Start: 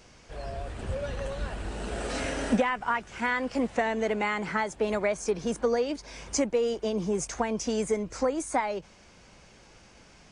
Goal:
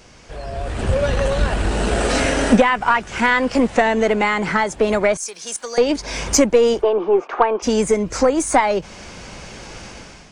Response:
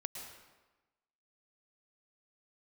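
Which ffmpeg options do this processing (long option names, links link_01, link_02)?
-filter_complex "[0:a]asettb=1/sr,asplit=3[link_01][link_02][link_03];[link_01]atrim=end=5.174[link_04];[link_02]atrim=start=5.17:end=5.78,asetpts=PTS-STARTPTS,afade=type=in:duration=0.004:curve=qsin,afade=type=out:start_time=0.606:duration=0.004:curve=qsin,aderivative[link_05];[link_03]atrim=start=5.776[link_06];[link_04][link_05]acrossfade=duration=0.004:curve1=hsin:curve2=qsin[link_07];[link_07][link_06]acrossfade=duration=0.004:curve1=qsin:curve2=hsin,asplit=2[link_08][link_09];[link_09]acompressor=threshold=-40dB:ratio=6,volume=3dB[link_10];[link_08][link_10]amix=inputs=2:normalize=0,asplit=3[link_11][link_12][link_13];[link_11]afade=type=out:start_time=6.81:duration=0.02[link_14];[link_12]highpass=frequency=330:width=0.5412,highpass=frequency=330:width=1.3066,equalizer=frequency=370:width_type=q:width=4:gain=7,equalizer=frequency=830:width_type=q:width=4:gain=6,equalizer=frequency=1200:width_type=q:width=4:gain=9,equalizer=frequency=2000:width_type=q:width=4:gain=-6,lowpass=frequency=2700:width=0.5412,lowpass=frequency=2700:width=1.3066,afade=type=in:start_time=6.81:duration=0.02,afade=type=out:start_time=7.62:duration=0.02[link_15];[link_13]afade=type=in:start_time=7.62:duration=0.02[link_16];[link_14][link_15][link_16]amix=inputs=3:normalize=0,dynaudnorm=framelen=470:gausssize=3:maxgain=12dB,aeval=exprs='0.841*(cos(1*acos(clip(val(0)/0.841,-1,1)))-cos(1*PI/2))+0.0473*(cos(4*acos(clip(val(0)/0.841,-1,1)))-cos(4*PI/2))':channel_layout=same"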